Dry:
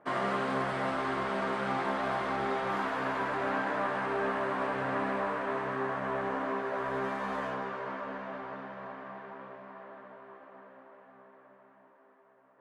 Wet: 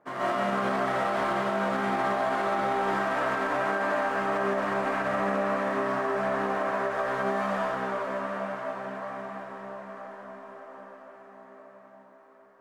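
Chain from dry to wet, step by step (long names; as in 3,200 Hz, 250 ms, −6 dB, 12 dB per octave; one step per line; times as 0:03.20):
running median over 9 samples
comb and all-pass reverb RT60 0.95 s, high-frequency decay 0.95×, pre-delay 95 ms, DRR −9.5 dB
brickwall limiter −15 dBFS, peak gain reduction 6.5 dB
level −3.5 dB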